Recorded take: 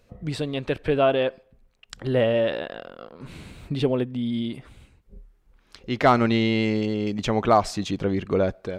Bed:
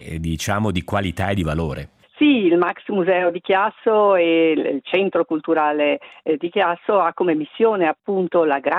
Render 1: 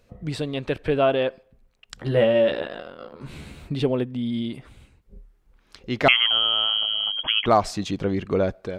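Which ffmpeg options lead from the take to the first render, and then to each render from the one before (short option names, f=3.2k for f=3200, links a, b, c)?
-filter_complex "[0:a]asettb=1/sr,asplit=3[a][b][c];[a]atrim=end=1.984[d];[b]atrim=start=1.98:end=3.63,asetpts=PTS-STARTPTS,afade=t=in:d=0.004:c=qsin,afade=t=out:st=1.646:d=0.004:c=qsin,asplit=2[e][f];[f]adelay=14,volume=-4dB[g];[e][g]amix=inputs=2:normalize=0,atrim=end_sample=72765[h];[c]atrim=start=3.626[i];[d][h]acrossfade=d=0.004:c1=hsin:c2=qsin[j];[j][i]acrossfade=d=0.004:c1=qsin:c2=hsin,asettb=1/sr,asplit=3[k][l][m];[k]atrim=end=6.084[n];[l]atrim=start=6.08:end=7.46,asetpts=PTS-STARTPTS,afade=t=in:d=0.004:c=qsin,afade=t=out:st=1.376:d=0.004:c=qsin,lowpass=f=2.9k:t=q:w=0.5098,lowpass=f=2.9k:t=q:w=0.6013,lowpass=f=2.9k:t=q:w=0.9,lowpass=f=2.9k:t=q:w=2.563,afreqshift=-3400[o];[m]atrim=start=7.456[p];[n][o]acrossfade=d=0.004:c1=hsin:c2=qsin[q];[q][p]acrossfade=d=0.004:c1=qsin:c2=hsin"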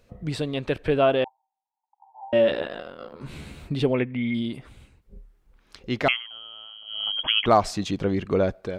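-filter_complex "[0:a]asettb=1/sr,asplit=3[a][b][c];[a]atrim=end=1.244[d];[b]atrim=start=1.24:end=2.33,asetpts=PTS-STARTPTS,afade=t=in:d=0.004:c=qsin,afade=t=out:st=1.086:d=0.004:c=qsin,asuperpass=centerf=860:order=8:qfactor=4.6[e];[c]atrim=start=2.326[f];[d][e]acrossfade=d=0.004:c1=hsin:c2=qsin[g];[g][f]acrossfade=d=0.004:c1=qsin:c2=hsin,asplit=3[h][i][j];[h]afade=t=out:st=3.93:d=0.02[k];[i]lowpass=f=2.2k:t=q:w=9.3,afade=t=in:st=3.93:d=0.02,afade=t=out:st=4.33:d=0.02[l];[j]afade=t=in:st=4.33:d=0.02[m];[k][l][m]amix=inputs=3:normalize=0,asplit=3[n][o][p];[n]atrim=end=6.23,asetpts=PTS-STARTPTS,afade=t=out:st=5.94:d=0.29:silence=0.0944061[q];[o]atrim=start=6.23:end=6.85,asetpts=PTS-STARTPTS,volume=-20.5dB[r];[p]atrim=start=6.85,asetpts=PTS-STARTPTS,afade=t=in:d=0.29:silence=0.0944061[s];[q][r][s]concat=n=3:v=0:a=1"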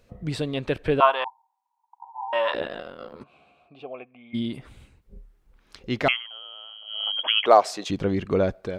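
-filter_complex "[0:a]asettb=1/sr,asplit=3[a][b][c];[a]atrim=end=1.004[d];[b]atrim=start=1:end=2.54,asetpts=PTS-STARTPTS,afade=t=in:d=0.004:c=qsin,afade=t=out:st=1.536:d=0.004:c=qsin,highpass=f=1k:t=q:w=11[e];[c]atrim=start=2.536[f];[d][e]acrossfade=d=0.004:c1=hsin:c2=qsin[g];[g][f]acrossfade=d=0.004:c1=qsin:c2=hsin,asplit=3[h][i][j];[h]afade=t=out:st=3.22:d=0.02[k];[i]asplit=3[l][m][n];[l]bandpass=f=730:t=q:w=8,volume=0dB[o];[m]bandpass=f=1.09k:t=q:w=8,volume=-6dB[p];[n]bandpass=f=2.44k:t=q:w=8,volume=-9dB[q];[o][p][q]amix=inputs=3:normalize=0,afade=t=in:st=3.22:d=0.02,afade=t=out:st=4.33:d=0.02[r];[j]afade=t=in:st=4.33:d=0.02[s];[k][r][s]amix=inputs=3:normalize=0,asettb=1/sr,asplit=3[t][u][v];[t]atrim=end=6.244[w];[u]atrim=start=6.24:end=7.9,asetpts=PTS-STARTPTS,afade=t=in:d=0.004:c=qsin,afade=t=out:st=1.656:d=0.004:c=qsin,highpass=f=490:t=q:w=1.6[x];[v]atrim=start=7.896[y];[w][x]acrossfade=d=0.004:c1=hsin:c2=qsin[z];[z][y]acrossfade=d=0.004:c1=qsin:c2=hsin"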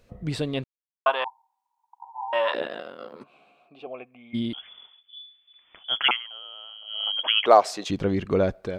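-filter_complex "[0:a]asettb=1/sr,asplit=3[a][b][c];[a]atrim=end=2.264[d];[b]atrim=start=2.26:end=3.87,asetpts=PTS-STARTPTS,afade=t=in:d=0.004:c=qsin,afade=t=out:st=1.606:d=0.004:c=qsin,highpass=200[e];[c]atrim=start=3.866[f];[d][e]acrossfade=d=0.004:c1=hsin:c2=qsin[g];[g][f]acrossfade=d=0.004:c1=qsin:c2=hsin,asettb=1/sr,asplit=3[h][i][j];[h]atrim=end=4.534[k];[i]atrim=start=4.53:end=6.11,asetpts=PTS-STARTPTS,afade=t=in:d=0.004:c=qsin,afade=t=out:st=1.576:d=0.004:c=qsin,lowpass=f=3k:t=q:w=0.5098,lowpass=f=3k:t=q:w=0.6013,lowpass=f=3k:t=q:w=0.9,lowpass=f=3k:t=q:w=2.563,afreqshift=-3500[l];[j]atrim=start=6.106[m];[k][l]acrossfade=d=0.004:c1=hsin:c2=qsin[n];[n][m]acrossfade=d=0.004:c1=qsin:c2=hsin,asplit=3[o][p][q];[o]atrim=end=0.64,asetpts=PTS-STARTPTS,afade=t=out:st=0.636:d=0.004:c=hsin[r];[p]atrim=start=0.64:end=1.06,asetpts=PTS-STARTPTS,volume=0[s];[q]atrim=start=1.06,asetpts=PTS-STARTPTS,afade=t=in:d=0.004:c=hsin[t];[r][s][t]concat=n=3:v=0:a=1"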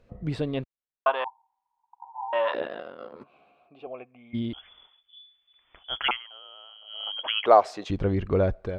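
-af "lowpass=f=1.7k:p=1,asubboost=boost=4:cutoff=85"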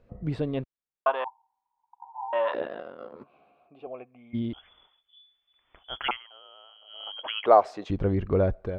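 -af "highshelf=f=2.4k:g=-9"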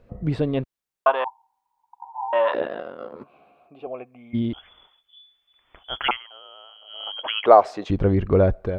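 -af "volume=6dB,alimiter=limit=-1dB:level=0:latency=1"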